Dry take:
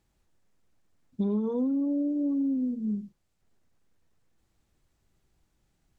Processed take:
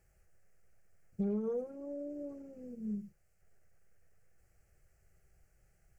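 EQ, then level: dynamic EQ 540 Hz, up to -7 dB, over -44 dBFS, Q 0.73; fixed phaser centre 990 Hz, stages 6; +4.5 dB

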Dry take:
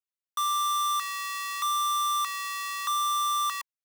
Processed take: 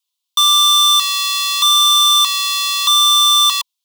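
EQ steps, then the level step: resonant high-pass 1000 Hz, resonance Q 5.2; resonant high shelf 2400 Hz +12.5 dB, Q 3; +3.0 dB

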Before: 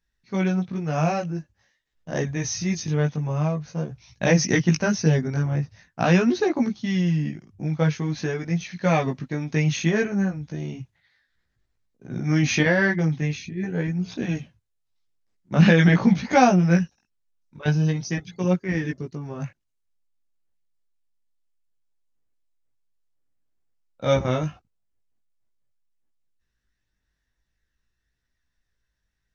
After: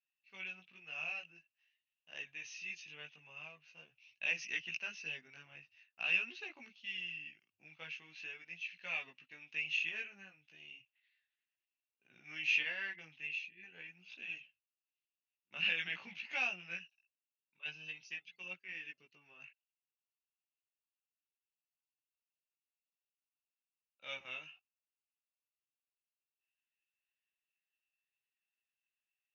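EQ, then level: band-pass 2700 Hz, Q 15; +4.5 dB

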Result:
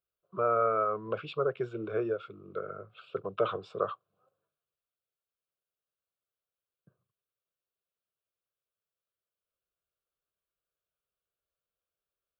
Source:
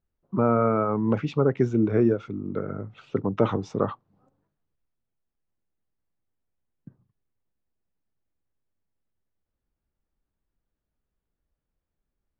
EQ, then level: HPF 620 Hz 6 dB/oct; fixed phaser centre 1300 Hz, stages 8; 0.0 dB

